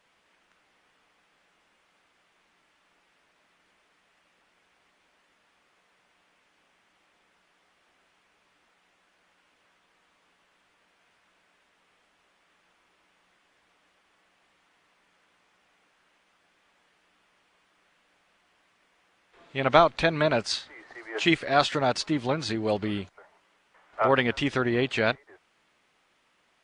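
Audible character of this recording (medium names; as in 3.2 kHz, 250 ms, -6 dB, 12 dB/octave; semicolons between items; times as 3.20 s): noise floor -68 dBFS; spectral tilt -3.0 dB/octave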